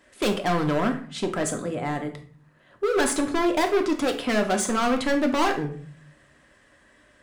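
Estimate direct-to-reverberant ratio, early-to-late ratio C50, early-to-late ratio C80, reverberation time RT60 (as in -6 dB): 3.5 dB, 11.0 dB, 15.0 dB, 0.50 s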